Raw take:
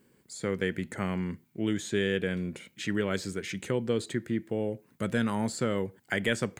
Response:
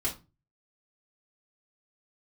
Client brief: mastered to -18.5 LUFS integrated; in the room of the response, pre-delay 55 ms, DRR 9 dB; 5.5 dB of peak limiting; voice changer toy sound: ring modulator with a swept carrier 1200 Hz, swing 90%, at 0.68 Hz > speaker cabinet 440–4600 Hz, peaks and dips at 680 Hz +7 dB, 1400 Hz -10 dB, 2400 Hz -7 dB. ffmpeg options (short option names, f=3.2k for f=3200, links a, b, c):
-filter_complex "[0:a]alimiter=limit=-20dB:level=0:latency=1,asplit=2[a][b];[1:a]atrim=start_sample=2205,adelay=55[c];[b][c]afir=irnorm=-1:irlink=0,volume=-14.5dB[d];[a][d]amix=inputs=2:normalize=0,aeval=exprs='val(0)*sin(2*PI*1200*n/s+1200*0.9/0.68*sin(2*PI*0.68*n/s))':c=same,highpass=440,equalizer=f=680:t=q:w=4:g=7,equalizer=f=1.4k:t=q:w=4:g=-10,equalizer=f=2.4k:t=q:w=4:g=-7,lowpass=f=4.6k:w=0.5412,lowpass=f=4.6k:w=1.3066,volume=19dB"